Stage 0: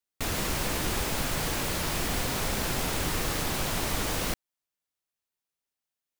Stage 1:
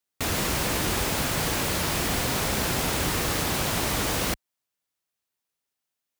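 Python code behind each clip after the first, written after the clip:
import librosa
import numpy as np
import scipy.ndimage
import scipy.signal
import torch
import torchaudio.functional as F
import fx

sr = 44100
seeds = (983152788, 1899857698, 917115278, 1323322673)

y = scipy.signal.sosfilt(scipy.signal.butter(2, 48.0, 'highpass', fs=sr, output='sos'), x)
y = y * librosa.db_to_amplitude(4.0)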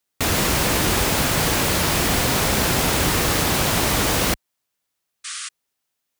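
y = fx.spec_paint(x, sr, seeds[0], shape='noise', start_s=5.24, length_s=0.25, low_hz=1100.0, high_hz=10000.0, level_db=-38.0)
y = y * librosa.db_to_amplitude(6.5)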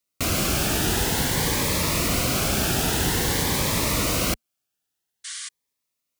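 y = fx.notch_cascade(x, sr, direction='rising', hz=0.5)
y = y * librosa.db_to_amplitude(-2.5)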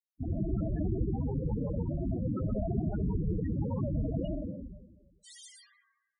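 y = fx.rev_freeverb(x, sr, rt60_s=1.3, hf_ratio=0.55, predelay_ms=50, drr_db=1.0)
y = fx.spec_topn(y, sr, count=8)
y = y * librosa.db_to_amplitude(-4.5)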